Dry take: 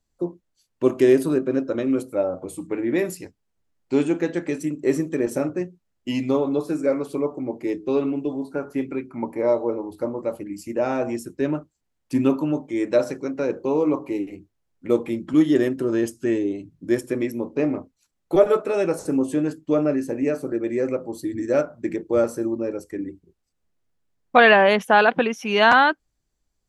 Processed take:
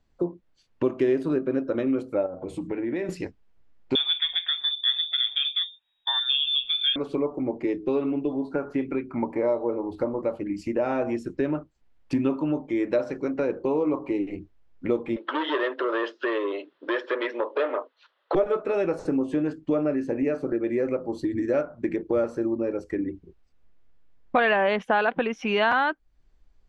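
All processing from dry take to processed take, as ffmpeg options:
ffmpeg -i in.wav -filter_complex "[0:a]asettb=1/sr,asplit=3[link_01][link_02][link_03];[link_01]atrim=end=2.264[link_04];[link_02]atrim=start=2.26:end=3.09,asetpts=PTS-STARTPTS,afade=type=in:duration=0.004:curve=qsin,afade=type=out:start_time=0.826:duration=0.004:curve=qsin,bandreject=frequency=1200:width=7.4,acompressor=threshold=-37dB:ratio=2:attack=3.2:release=140:knee=1:detection=peak[link_05];[link_03]atrim=start=3.086[link_06];[link_04][link_05]acrossfade=duration=0.004:curve1=hsin:curve2=qsin[link_07];[link_07][link_06]acrossfade=duration=0.004:curve1=qsin:curve2=hsin,asettb=1/sr,asplit=3[link_08][link_09][link_10];[link_08]atrim=end=3.954[link_11];[link_09]atrim=start=3.95:end=6.96,asetpts=PTS-STARTPTS,afade=type=in:duration=0.004:curve=qsin,afade=type=out:start_time=3.006:duration=0.004:curve=qsin,lowpass=frequency=3200:width_type=q:width=0.5098,lowpass=frequency=3200:width_type=q:width=0.6013,lowpass=frequency=3200:width_type=q:width=0.9,lowpass=frequency=3200:width_type=q:width=2.563,afreqshift=-3800,aecho=1:1:1.2:0.42,atrim=end_sample=132741[link_12];[link_10]atrim=start=6.956[link_13];[link_11][link_12]acrossfade=duration=0.004:curve1=hsin:curve2=qsin[link_14];[link_14][link_13]acrossfade=duration=0.004:curve1=qsin:curve2=hsin,asettb=1/sr,asplit=3[link_15][link_16][link_17];[link_15]atrim=end=15.164[link_18];[link_16]atrim=start=15.16:end=18.35,asetpts=PTS-STARTPTS,afade=type=in:duration=0.004:curve=qsin,afade=type=out:start_time=3.186:duration=0.004:curve=qsin,asplit=2[link_19][link_20];[link_20]highpass=frequency=720:poles=1,volume=21dB,asoftclip=type=tanh:threshold=-6.5dB[link_21];[link_19][link_21]amix=inputs=2:normalize=0,lowpass=frequency=3000:poles=1,volume=-6dB,highpass=frequency=500:width=0.5412,highpass=frequency=500:width=1.3066,equalizer=frequency=760:width_type=q:width=4:gain=-8,equalizer=frequency=2300:width_type=q:width=4:gain=-10,equalizer=frequency=3400:width_type=q:width=4:gain=4,lowpass=frequency=4000:width=0.5412,lowpass=frequency=4000:width=1.3066[link_22];[link_17]atrim=start=18.346[link_23];[link_18][link_22]acrossfade=duration=0.004:curve1=hsin:curve2=qsin[link_24];[link_24][link_23]acrossfade=duration=0.004:curve1=qsin:curve2=hsin,lowpass=3300,asubboost=boost=3:cutoff=58,acompressor=threshold=-35dB:ratio=2.5,volume=8dB" out.wav

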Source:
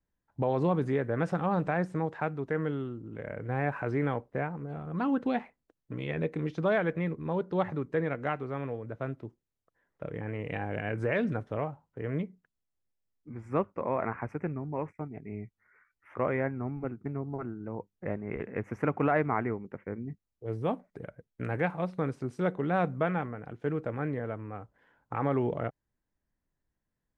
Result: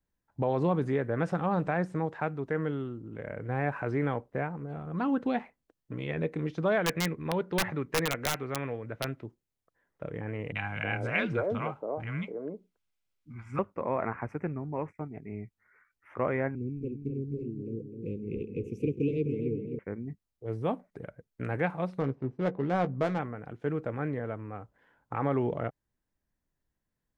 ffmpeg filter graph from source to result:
ffmpeg -i in.wav -filter_complex "[0:a]asettb=1/sr,asplit=3[link_01][link_02][link_03];[link_01]atrim=end=6.844[link_04];[link_02]atrim=start=6.84:end=9.23,asetpts=PTS-STARTPTS,afade=type=in:duration=0.004:curve=qsin,afade=type=out:start_time=2.386:duration=0.004:curve=qsin,equalizer=frequency=2200:width_type=o:width=1.3:gain=8.5,aeval=exprs='(mod(9.44*val(0)+1,2)-1)/9.44':channel_layout=same[link_05];[link_03]atrim=start=9.226[link_06];[link_04][link_05]acrossfade=duration=0.004:curve1=hsin:curve2=qsin[link_07];[link_07][link_06]acrossfade=duration=0.004:curve1=qsin:curve2=hsin,asettb=1/sr,asplit=3[link_08][link_09][link_10];[link_08]atrim=end=10.524[link_11];[link_09]atrim=start=10.52:end=13.59,asetpts=PTS-STARTPTS,afade=type=in:duration=0.004:curve=qsin,afade=type=out:start_time=3.066:duration=0.004:curve=qsin,equalizer=frequency=2100:width_type=o:width=2.6:gain=9,bandreject=frequency=1800:width=5.8,acrossover=split=250|780[link_12][link_13][link_14];[link_14]adelay=30[link_15];[link_13]adelay=310[link_16];[link_12][link_16][link_15]amix=inputs=3:normalize=0,atrim=end_sample=135387[link_17];[link_10]atrim=start=13.586[link_18];[link_11][link_17]acrossfade=duration=0.004:curve1=hsin:curve2=qsin[link_19];[link_19][link_18]acrossfade=duration=0.004:curve1=qsin:curve2=hsin,asettb=1/sr,asplit=3[link_20][link_21][link_22];[link_20]atrim=end=16.554[link_23];[link_21]atrim=start=16.55:end=19.79,asetpts=PTS-STARTPTS,afade=type=in:duration=0.004:curve=qsin,afade=type=out:start_time=3.236:duration=0.004:curve=qsin,asuperstop=centerf=1100:order=20:qfactor=0.56,asplit=2[link_24][link_25];[link_25]adelay=257,lowpass=frequency=1800:poles=1,volume=-6.5dB,asplit=2[link_26][link_27];[link_27]adelay=257,lowpass=frequency=1800:poles=1,volume=0.52,asplit=2[link_28][link_29];[link_29]adelay=257,lowpass=frequency=1800:poles=1,volume=0.52,asplit=2[link_30][link_31];[link_31]adelay=257,lowpass=frequency=1800:poles=1,volume=0.52,asplit=2[link_32][link_33];[link_33]adelay=257,lowpass=frequency=1800:poles=1,volume=0.52,asplit=2[link_34][link_35];[link_35]adelay=257,lowpass=frequency=1800:poles=1,volume=0.52[link_36];[link_24][link_26][link_28][link_30][link_32][link_34][link_36]amix=inputs=7:normalize=0,atrim=end_sample=142884[link_37];[link_22]atrim=start=19.786[link_38];[link_23][link_37]acrossfade=duration=0.004:curve1=hsin:curve2=qsin[link_39];[link_39][link_38]acrossfade=duration=0.004:curve1=qsin:curve2=hsin,asettb=1/sr,asplit=3[link_40][link_41][link_42];[link_40]atrim=end=22.004[link_43];[link_41]atrim=start=22:end=23.19,asetpts=PTS-STARTPTS,afade=type=in:duration=0.004:curve=qsin,afade=type=out:start_time=1.186:duration=0.004:curve=qsin,equalizer=frequency=1400:width_type=o:width=0.29:gain=-6.5,adynamicsmooth=sensitivity=4.5:basefreq=1000,asplit=2[link_44][link_45];[link_45]adelay=15,volume=-10.5dB[link_46];[link_44][link_46]amix=inputs=2:normalize=0,atrim=end_sample=52479[link_47];[link_42]atrim=start=23.186[link_48];[link_43][link_47]acrossfade=duration=0.004:curve1=hsin:curve2=qsin[link_49];[link_49][link_48]acrossfade=duration=0.004:curve1=qsin:curve2=hsin" out.wav

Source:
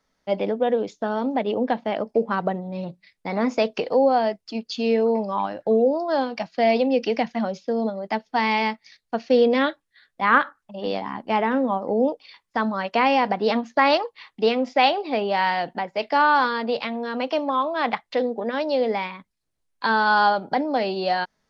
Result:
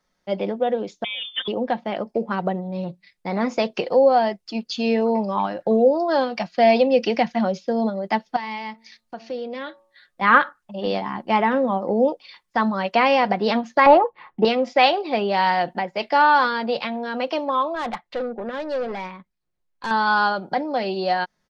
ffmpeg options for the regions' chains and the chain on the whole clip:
ffmpeg -i in.wav -filter_complex "[0:a]asettb=1/sr,asplit=3[link_01][link_02][link_03];[link_01]atrim=end=1.044[link_04];[link_02]atrim=start=1.04:end=1.48,asetpts=PTS-STARTPTS,afade=type=in:duration=0.004:curve=qsin,afade=type=out:start_time=0.436:duration=0.004:curve=qsin,highpass=frequency=1200:poles=1,lowpass=frequency=3200:width_type=q:width=0.5098,lowpass=frequency=3200:width_type=q:width=0.6013,lowpass=frequency=3200:width_type=q:width=0.9,lowpass=frequency=3200:width_type=q:width=2.563,afreqshift=-3800,aecho=1:1:3.9:0.79,atrim=end_sample=19404[link_05];[link_03]atrim=start=1.476[link_06];[link_04][link_05]acrossfade=duration=0.004:curve1=hsin:curve2=qsin[link_07];[link_07][link_06]acrossfade=duration=0.004:curve1=qsin:curve2=hsin,asettb=1/sr,asplit=3[link_08][link_09][link_10];[link_08]atrim=end=8.364[link_11];[link_09]atrim=start=8.36:end=10.21,asetpts=PTS-STARTPTS,afade=type=in:duration=0.004:curve=qsin,afade=type=out:start_time=1.846:duration=0.004:curve=qsin,acompressor=threshold=-41dB:ratio=2:attack=3.2:release=140:knee=1:detection=peak,bandreject=frequency=112.6:width_type=h:width=4,bandreject=frequency=225.2:width_type=h:width=4,bandreject=frequency=337.8:width_type=h:width=4,bandreject=frequency=450.4:width_type=h:width=4,bandreject=frequency=563:width_type=h:width=4,bandreject=frequency=675.6:width_type=h:width=4,bandreject=frequency=788.2:width_type=h:width=4,bandreject=frequency=900.8:width_type=h:width=4,bandreject=frequency=1013.4:width_type=h:width=4,bandreject=frequency=1126:width_type=h:width=4,bandreject=frequency=1238.6:width_type=h:width=4[link_12];[link_10]atrim=start=10.206[link_13];[link_11][link_12]acrossfade=duration=0.004:curve1=hsin:curve2=qsin[link_14];[link_14][link_13]acrossfade=duration=0.004:curve1=qsin:curve2=hsin,asettb=1/sr,asplit=3[link_15][link_16][link_17];[link_15]atrim=end=13.864[link_18];[link_16]atrim=start=13.86:end=14.45,asetpts=PTS-STARTPTS,afade=type=in:duration=0.004:curve=qsin,afade=type=out:start_time=0.586:duration=0.004:curve=qsin,equalizer=frequency=840:width_type=o:width=0.37:gain=4,acontrast=62,lowpass=1100[link_19];[link_17]atrim=start=14.446[link_20];[link_18][link_19]acrossfade=duration=0.004:curve1=hsin:curve2=qsin[link_21];[link_21][link_20]acrossfade=duration=0.004:curve1=qsin:curve2=hsin,asettb=1/sr,asplit=3[link_22][link_23][link_24];[link_22]atrim=end=17.754[link_25];[link_23]atrim=start=17.75:end=19.91,asetpts=PTS-STARTPTS,afade=type=in:duration=0.004:curve=qsin,afade=type=out:start_time=2.156:duration=0.004:curve=qsin,lowpass=frequency=2600:poles=1,aeval=exprs='(tanh(12.6*val(0)+0.2)-tanh(0.2))/12.6':channel_layout=same[link_26];[link_24]atrim=start=19.906[link_27];[link_25][link_26]acrossfade=duration=0.004:curve1=hsin:curve2=qsin[link_28];[link_28][link_27]acrossfade=duration=0.004:curve1=qsin:curve2=hsin,aecho=1:1:5.6:0.38,dynaudnorm=framelen=570:gausssize=17:maxgain=11.5dB,volume=-1dB" out.wav

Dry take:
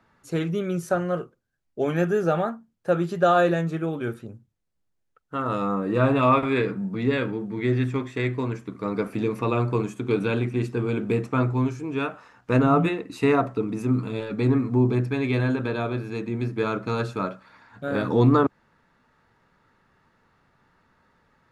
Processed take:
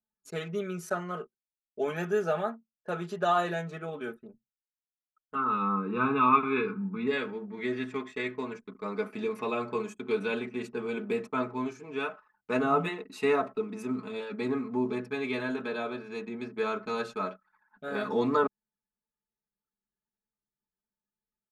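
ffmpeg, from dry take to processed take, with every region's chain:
ffmpeg -i in.wav -filter_complex "[0:a]asettb=1/sr,asplit=3[link_01][link_02][link_03];[link_01]atrim=end=5.354[link_04];[link_02]atrim=start=5.35:end=7.07,asetpts=PTS-STARTPTS,afade=type=in:duration=0.004:curve=qsin,afade=type=out:start_time=1.716:duration=0.004:curve=qsin,lowpass=2300,aecho=1:1:0.8:0.87,atrim=end_sample=75852[link_05];[link_03]atrim=start=7.066[link_06];[link_04][link_05]acrossfade=duration=0.004:curve1=hsin:curve2=qsin[link_07];[link_07][link_06]acrossfade=duration=0.004:curve1=qsin:curve2=hsin,highpass=frequency=450:poles=1,anlmdn=0.0251,aecho=1:1:4.7:0.8,volume=-5.5dB" out.wav

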